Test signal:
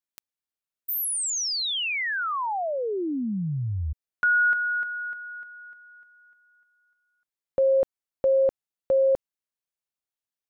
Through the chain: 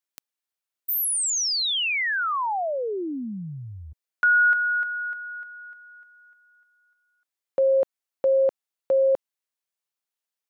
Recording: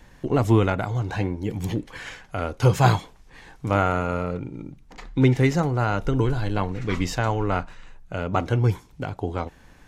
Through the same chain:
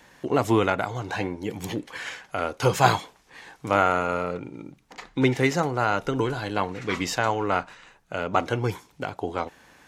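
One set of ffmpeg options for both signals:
-af "highpass=f=440:p=1,volume=3dB"

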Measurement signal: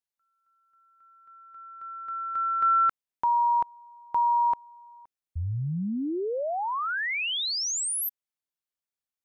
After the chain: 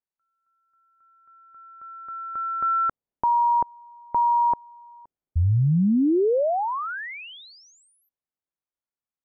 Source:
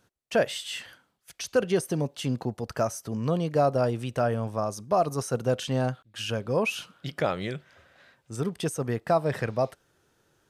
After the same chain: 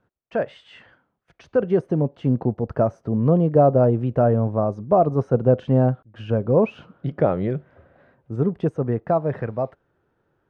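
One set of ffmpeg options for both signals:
-filter_complex "[0:a]lowpass=1.5k,acrossover=split=710[a][b];[a]dynaudnorm=f=170:g=21:m=10dB[c];[c][b]amix=inputs=2:normalize=0"

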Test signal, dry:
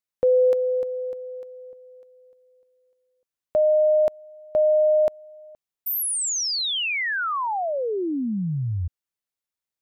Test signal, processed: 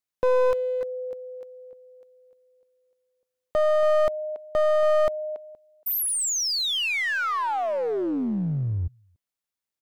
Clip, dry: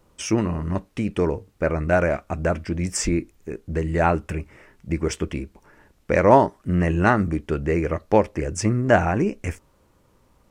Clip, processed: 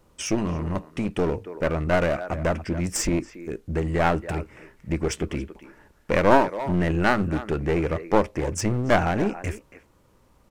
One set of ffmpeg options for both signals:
-filter_complex "[0:a]asplit=2[a][b];[b]adelay=280,highpass=300,lowpass=3.4k,asoftclip=type=hard:threshold=-10dB,volume=-14dB[c];[a][c]amix=inputs=2:normalize=0,aeval=exprs='clip(val(0),-1,0.0631)':c=same"

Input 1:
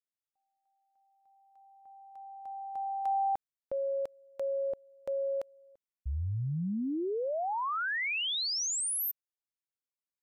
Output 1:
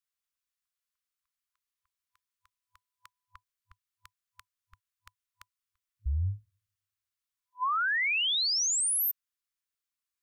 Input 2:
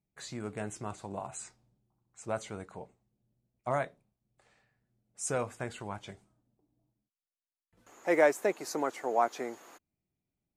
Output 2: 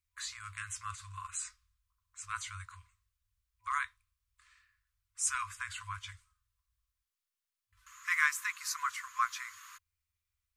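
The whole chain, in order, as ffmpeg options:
-af "afftfilt=real='re*(1-between(b*sr/4096,100,1000))':imag='im*(1-between(b*sr/4096,100,1000))':win_size=4096:overlap=0.75,volume=4.5dB"

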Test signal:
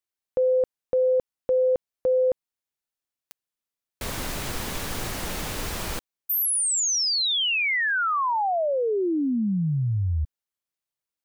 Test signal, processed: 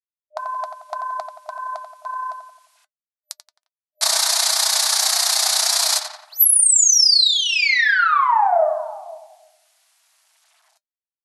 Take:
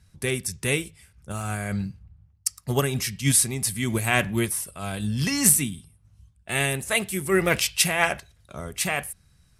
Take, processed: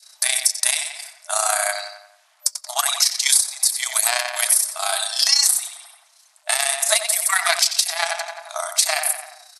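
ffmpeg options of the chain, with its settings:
-filter_complex "[0:a]aeval=exprs='0.531*(cos(1*acos(clip(val(0)/0.531,-1,1)))-cos(1*PI/2))+0.188*(cos(2*acos(clip(val(0)/0.531,-1,1)))-cos(2*PI/2))+0.0119*(cos(7*acos(clip(val(0)/0.531,-1,1)))-cos(7*PI/2))':c=same,tremolo=f=30:d=0.75,highshelf=f=3.5k:t=q:w=3:g=6.5,asplit=2[a][b];[b]adelay=88,lowpass=f=3.4k:p=1,volume=-7.5dB,asplit=2[c][d];[d]adelay=88,lowpass=f=3.4k:p=1,volume=0.49,asplit=2[e][f];[f]adelay=88,lowpass=f=3.4k:p=1,volume=0.49,asplit=2[g][h];[h]adelay=88,lowpass=f=3.4k:p=1,volume=0.49,asplit=2[i][j];[j]adelay=88,lowpass=f=3.4k:p=1,volume=0.49,asplit=2[k][l];[l]adelay=88,lowpass=f=3.4k:p=1,volume=0.49[m];[c][e][g][i][k][m]amix=inputs=6:normalize=0[n];[a][n]amix=inputs=2:normalize=0,acrusher=bits=11:mix=0:aa=0.000001,adynamicequalizer=threshold=0.00891:dfrequency=1100:dqfactor=0.75:tfrequency=1100:tqfactor=0.75:attack=5:release=100:ratio=0.375:range=1.5:mode=cutabove:tftype=bell,afftfilt=real='re*between(b*sr/4096,610,12000)':imag='im*between(b*sr/4096,610,12000)':win_size=4096:overlap=0.75,acompressor=threshold=-27dB:ratio=20:attack=5.4:release=716:knee=6:detection=peak,flanger=delay=3.3:depth=1.3:regen=-67:speed=0.23:shape=sinusoidal,alimiter=level_in=23dB:limit=-1dB:release=50:level=0:latency=1,volume=-1dB"

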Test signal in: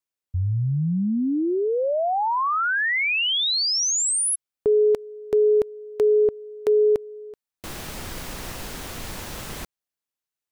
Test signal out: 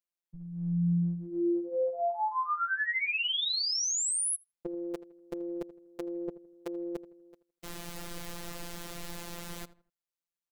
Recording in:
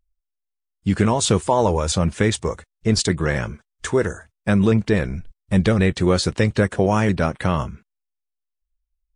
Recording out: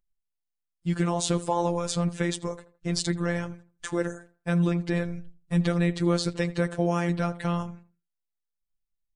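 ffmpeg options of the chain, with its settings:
-filter_complex "[0:a]afftfilt=real='hypot(re,im)*cos(PI*b)':imag='0':win_size=1024:overlap=0.75,asplit=2[a][b];[b]adelay=81,lowpass=f=2.1k:p=1,volume=-16.5dB,asplit=2[c][d];[d]adelay=81,lowpass=f=2.1k:p=1,volume=0.33,asplit=2[e][f];[f]adelay=81,lowpass=f=2.1k:p=1,volume=0.33[g];[a][c][e][g]amix=inputs=4:normalize=0,volume=-4.5dB"

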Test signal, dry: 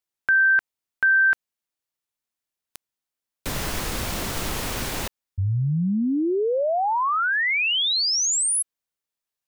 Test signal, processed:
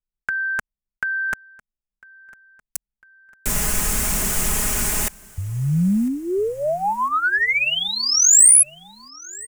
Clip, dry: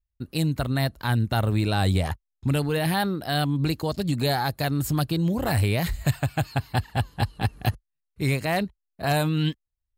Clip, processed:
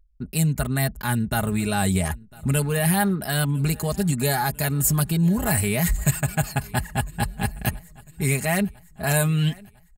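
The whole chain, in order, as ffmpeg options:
-filter_complex "[0:a]areverse,acompressor=mode=upward:threshold=-27dB:ratio=1.5:attack=10:release=31:knee=2.83:detection=peak,areverse,equalizer=f=250:t=o:w=1:g=-4,equalizer=f=500:t=o:w=1:g=-6,equalizer=f=1k:t=o:w=1:g=-4,equalizer=f=4k:t=o:w=1:g=-11,equalizer=f=8k:t=o:w=1:g=7,anlmdn=0.0631,aecho=1:1:4.8:0.65,acontrast=81,highshelf=f=7.7k:g=4,asplit=2[a][b];[b]aecho=0:1:1001|2002|3003|4004:0.0668|0.0361|0.0195|0.0105[c];[a][c]amix=inputs=2:normalize=0,volume=-2.5dB"

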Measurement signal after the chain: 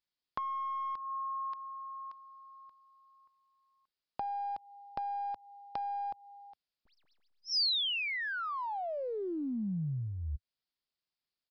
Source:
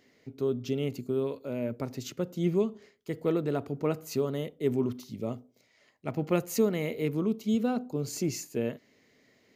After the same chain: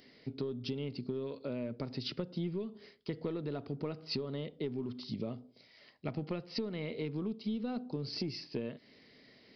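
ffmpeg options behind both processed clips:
-filter_complex "[0:a]asplit=2[a][b];[b]aeval=exprs='clip(val(0),-1,0.0299)':c=same,volume=-11.5dB[c];[a][c]amix=inputs=2:normalize=0,acompressor=threshold=-35dB:ratio=12,equalizer=f=96:w=2.6:g=-6,aresample=11025,aresample=44100,bass=f=250:g=4,treble=f=4k:g=13"

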